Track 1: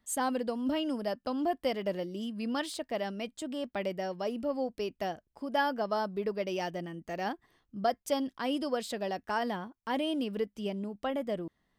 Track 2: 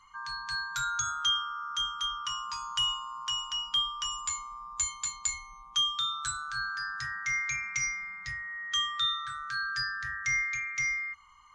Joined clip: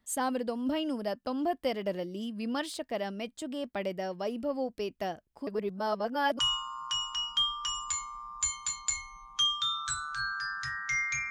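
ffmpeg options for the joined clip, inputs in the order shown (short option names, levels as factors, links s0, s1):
-filter_complex "[0:a]apad=whole_dur=11.3,atrim=end=11.3,asplit=2[s0][s1];[s0]atrim=end=5.472[s2];[s1]atrim=start=5.468:end=6.392,asetpts=PTS-STARTPTS,areverse[s3];[1:a]atrim=start=2.758:end=7.67[s4];[s2][s3]acrossfade=d=0.004:c1=hsin:c2=hsin[s5];[s5][s4]acrossfade=d=0.004:c1=hsin:c2=hsin"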